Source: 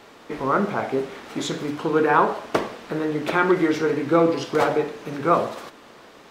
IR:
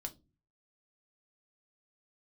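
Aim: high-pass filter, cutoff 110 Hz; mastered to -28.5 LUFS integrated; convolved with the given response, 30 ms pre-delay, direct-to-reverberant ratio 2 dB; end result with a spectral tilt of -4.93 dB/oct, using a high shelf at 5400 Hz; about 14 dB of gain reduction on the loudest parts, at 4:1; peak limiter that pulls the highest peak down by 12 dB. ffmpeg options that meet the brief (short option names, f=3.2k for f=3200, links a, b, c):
-filter_complex "[0:a]highpass=110,highshelf=f=5.4k:g=4,acompressor=threshold=-30dB:ratio=4,alimiter=level_in=4dB:limit=-24dB:level=0:latency=1,volume=-4dB,asplit=2[a][b];[1:a]atrim=start_sample=2205,adelay=30[c];[b][c]afir=irnorm=-1:irlink=0,volume=0.5dB[d];[a][d]amix=inputs=2:normalize=0,volume=6dB"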